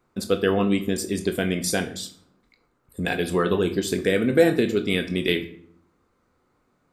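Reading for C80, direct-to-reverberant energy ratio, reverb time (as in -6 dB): 17.0 dB, 7.0 dB, 0.55 s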